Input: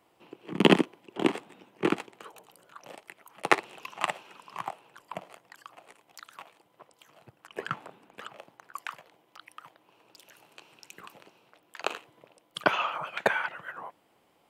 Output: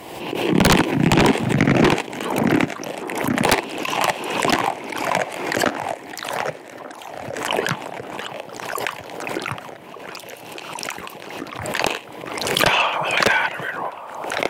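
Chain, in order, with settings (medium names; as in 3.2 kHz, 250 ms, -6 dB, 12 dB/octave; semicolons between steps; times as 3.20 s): peaking EQ 1.3 kHz -12.5 dB 0.29 oct; ever faster or slower copies 344 ms, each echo -3 st, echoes 2, each echo -6 dB; sine folder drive 16 dB, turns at -4.5 dBFS; on a send: feedback echo behind a band-pass 1188 ms, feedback 54%, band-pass 620 Hz, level -14 dB; on the sum: swell ahead of each attack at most 42 dB/s; trim -5 dB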